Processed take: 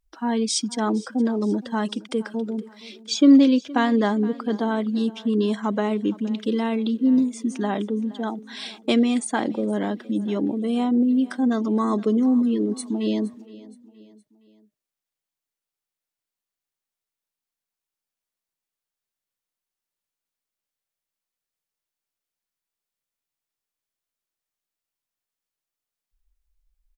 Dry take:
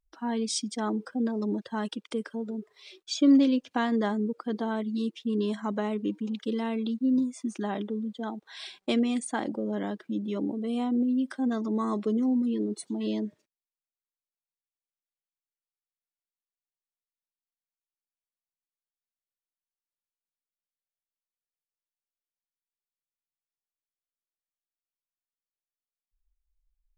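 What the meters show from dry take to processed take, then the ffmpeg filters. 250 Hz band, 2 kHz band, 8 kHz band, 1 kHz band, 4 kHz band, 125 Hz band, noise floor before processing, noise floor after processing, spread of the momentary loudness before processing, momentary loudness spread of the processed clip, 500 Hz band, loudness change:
+6.5 dB, +6.5 dB, +6.5 dB, +6.5 dB, +6.5 dB, n/a, under -85 dBFS, under -85 dBFS, 9 LU, 9 LU, +6.5 dB, +6.5 dB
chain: -af "aecho=1:1:468|936|1404:0.1|0.046|0.0212,volume=6.5dB"

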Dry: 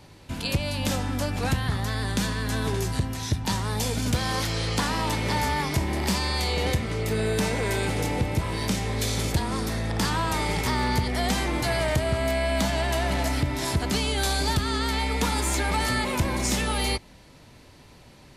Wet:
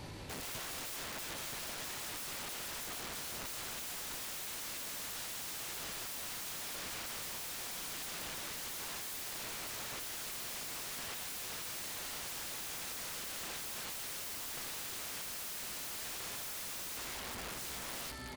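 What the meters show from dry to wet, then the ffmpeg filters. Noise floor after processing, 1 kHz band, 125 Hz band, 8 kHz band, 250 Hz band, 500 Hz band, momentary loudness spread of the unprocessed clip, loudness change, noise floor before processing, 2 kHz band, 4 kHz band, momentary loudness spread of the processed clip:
-43 dBFS, -19.0 dB, -29.5 dB, -7.5 dB, -25.5 dB, -22.5 dB, 3 LU, -14.0 dB, -50 dBFS, -15.0 dB, -12.5 dB, 1 LU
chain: -af "aecho=1:1:1145|2290|3435|4580|5725:0.376|0.169|0.0761|0.0342|0.0154,aeval=exprs='(mod(33.5*val(0)+1,2)-1)/33.5':c=same,alimiter=level_in=18dB:limit=-24dB:level=0:latency=1:release=20,volume=-18dB,volume=4dB"

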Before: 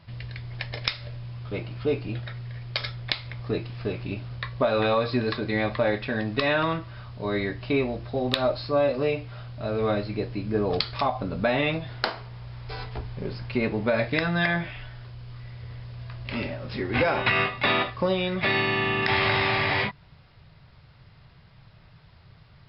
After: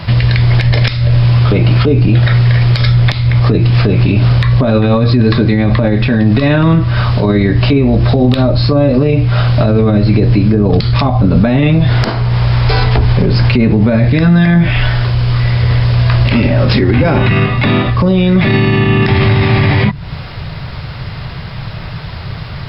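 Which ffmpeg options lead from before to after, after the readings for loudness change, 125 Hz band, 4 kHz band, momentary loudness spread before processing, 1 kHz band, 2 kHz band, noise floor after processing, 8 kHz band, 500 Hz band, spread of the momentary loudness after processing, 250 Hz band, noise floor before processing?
+16.0 dB, +25.0 dB, +10.0 dB, 15 LU, +9.5 dB, +8.5 dB, -24 dBFS, n/a, +11.0 dB, 15 LU, +19.0 dB, -53 dBFS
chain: -filter_complex "[0:a]acrossover=split=270[a][b];[b]acompressor=threshold=-39dB:ratio=12[c];[a][c]amix=inputs=2:normalize=0,alimiter=level_in=30dB:limit=-1dB:release=50:level=0:latency=1,volume=-1dB"

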